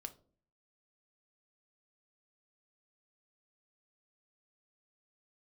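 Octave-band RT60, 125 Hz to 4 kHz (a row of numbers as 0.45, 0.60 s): 0.70, 0.65, 0.55, 0.40, 0.25, 0.25 s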